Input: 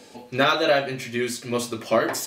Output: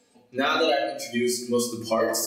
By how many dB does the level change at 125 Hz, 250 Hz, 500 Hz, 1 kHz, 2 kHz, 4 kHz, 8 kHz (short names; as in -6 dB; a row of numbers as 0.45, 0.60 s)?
-7.5, 0.0, -1.5, -2.0, -4.5, -1.5, +3.0 dB